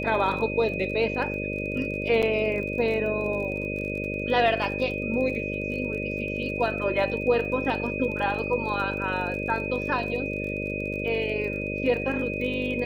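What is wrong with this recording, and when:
buzz 50 Hz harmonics 12 -32 dBFS
crackle 31 per s -35 dBFS
whine 2.5 kHz -32 dBFS
2.22–2.23 s: dropout 7.4 ms

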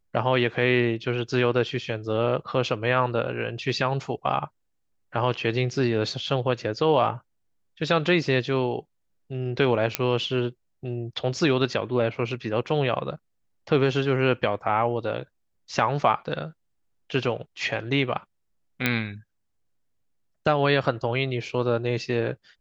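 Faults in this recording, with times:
9.95 s: pop -4 dBFS
18.86 s: pop -8 dBFS

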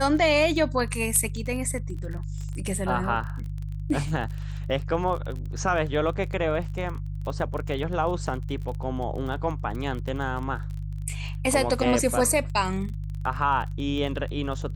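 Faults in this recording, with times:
crackle 29 per s -33 dBFS
hum 50 Hz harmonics 3 -32 dBFS

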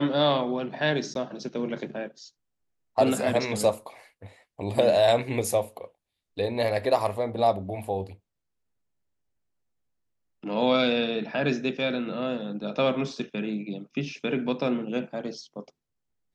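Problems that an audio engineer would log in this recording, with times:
1.14–1.15 s: dropout 12 ms

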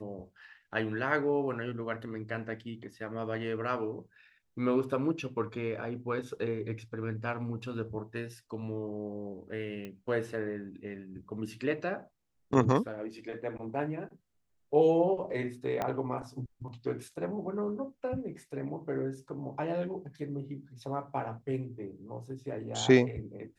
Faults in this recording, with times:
9.85 s: pop -28 dBFS
15.82 s: pop -18 dBFS

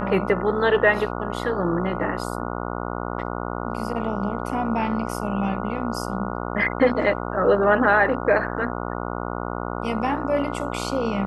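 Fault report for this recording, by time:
buzz 60 Hz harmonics 24 -29 dBFS

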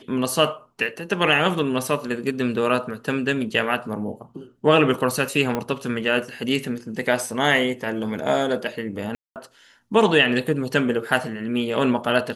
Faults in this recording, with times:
5.55 s: pop -11 dBFS
9.15–9.36 s: dropout 208 ms

